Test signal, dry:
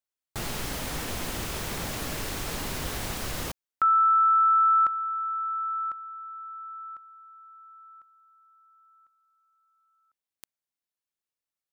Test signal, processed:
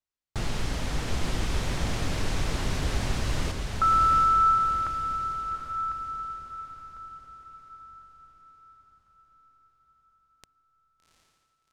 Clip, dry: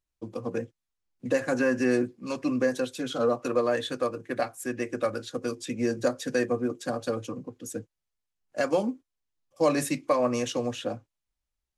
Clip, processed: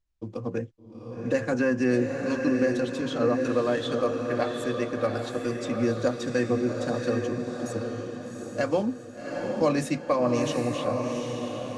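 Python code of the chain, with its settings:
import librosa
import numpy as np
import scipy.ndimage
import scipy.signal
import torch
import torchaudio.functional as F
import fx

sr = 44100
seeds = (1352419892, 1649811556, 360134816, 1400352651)

p1 = scipy.signal.sosfilt(scipy.signal.butter(2, 7000.0, 'lowpass', fs=sr, output='sos'), x)
p2 = fx.low_shelf(p1, sr, hz=140.0, db=10.5)
p3 = p2 + fx.echo_diffused(p2, sr, ms=764, feedback_pct=46, wet_db=-4, dry=0)
y = p3 * 10.0 ** (-1.0 / 20.0)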